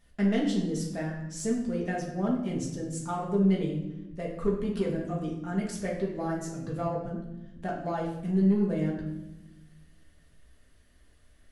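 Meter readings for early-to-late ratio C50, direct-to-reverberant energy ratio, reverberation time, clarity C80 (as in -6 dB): 4.5 dB, -4.0 dB, 0.95 s, 7.5 dB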